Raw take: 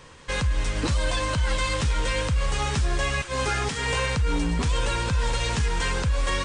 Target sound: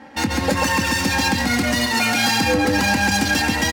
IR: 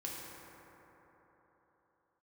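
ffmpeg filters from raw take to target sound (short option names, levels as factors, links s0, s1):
-filter_complex "[0:a]highshelf=f=5400:g=6,asplit=2[s0][s1];[s1]aecho=0:1:43.73|236.2:0.355|0.708[s2];[s0][s2]amix=inputs=2:normalize=0,adynamicsmooth=sensitivity=3:basefreq=850,highpass=95,asplit=2[s3][s4];[s4]alimiter=limit=0.0668:level=0:latency=1,volume=0.891[s5];[s3][s5]amix=inputs=2:normalize=0,aecho=1:1:6.4:0.77,asetrate=76440,aresample=44100,equalizer=f=3200:t=o:w=0.47:g=-5.5,volume=1.33"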